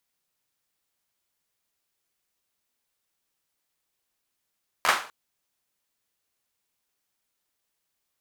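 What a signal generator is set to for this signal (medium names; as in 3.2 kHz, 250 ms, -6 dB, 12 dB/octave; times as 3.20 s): hand clap length 0.25 s, apart 12 ms, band 1.2 kHz, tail 0.39 s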